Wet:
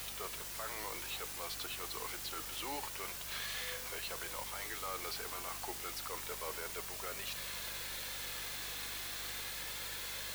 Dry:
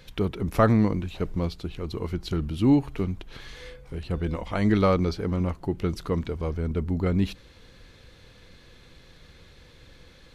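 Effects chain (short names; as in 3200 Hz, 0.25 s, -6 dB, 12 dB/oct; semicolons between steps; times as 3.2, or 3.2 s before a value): Bessel high-pass 980 Hz, order 4; reverse; compressor, threshold -49 dBFS, peak gain reduction 25.5 dB; reverse; limiter -44 dBFS, peak gain reduction 12 dB; in parallel at -3 dB: requantised 8-bit, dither triangular; on the sum: flange 0.28 Hz, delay 1.6 ms, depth 1.2 ms, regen -62%; hum 50 Hz, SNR 15 dB; gain +10.5 dB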